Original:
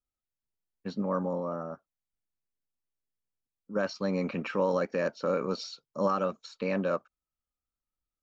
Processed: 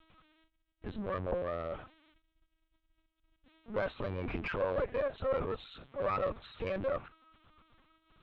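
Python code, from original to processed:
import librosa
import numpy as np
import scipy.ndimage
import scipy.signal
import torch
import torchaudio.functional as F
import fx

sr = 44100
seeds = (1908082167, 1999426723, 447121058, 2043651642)

y = x + 0.5 * 10.0 ** (-42.0 / 20.0) * np.sign(x)
y = fx.noise_reduce_blind(y, sr, reduce_db=7)
y = fx.rider(y, sr, range_db=10, speed_s=2.0)
y = fx.lpc_vocoder(y, sr, seeds[0], excitation='pitch_kept', order=8)
y = fx.tube_stage(y, sr, drive_db=23.0, bias=0.4)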